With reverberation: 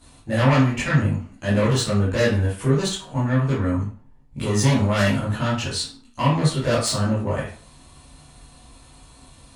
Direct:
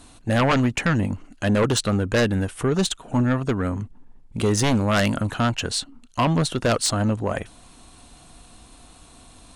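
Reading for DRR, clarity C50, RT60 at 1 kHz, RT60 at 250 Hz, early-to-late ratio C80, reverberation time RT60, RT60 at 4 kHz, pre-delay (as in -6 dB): -10.0 dB, 4.0 dB, 0.45 s, 0.40 s, 9.0 dB, 0.45 s, 0.35 s, 11 ms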